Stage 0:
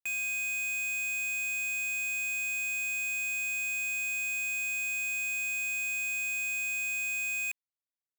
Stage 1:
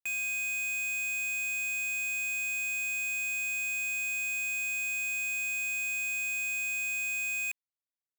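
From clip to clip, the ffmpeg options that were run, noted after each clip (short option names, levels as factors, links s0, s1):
-af anull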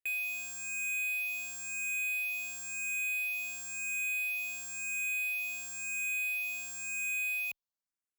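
-filter_complex "[0:a]asplit=2[s0][s1];[s1]afreqshift=0.97[s2];[s0][s2]amix=inputs=2:normalize=1"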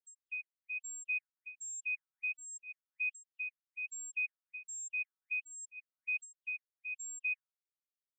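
-af "afftfilt=real='re*gte(hypot(re,im),0.02)':imag='im*gte(hypot(re,im),0.02)':win_size=1024:overlap=0.75,afftfilt=real='re*between(b*sr/1024,960*pow(7100/960,0.5+0.5*sin(2*PI*1.3*pts/sr))/1.41,960*pow(7100/960,0.5+0.5*sin(2*PI*1.3*pts/sr))*1.41)':imag='im*between(b*sr/1024,960*pow(7100/960,0.5+0.5*sin(2*PI*1.3*pts/sr))/1.41,960*pow(7100/960,0.5+0.5*sin(2*PI*1.3*pts/sr))*1.41)':win_size=1024:overlap=0.75,volume=1.12"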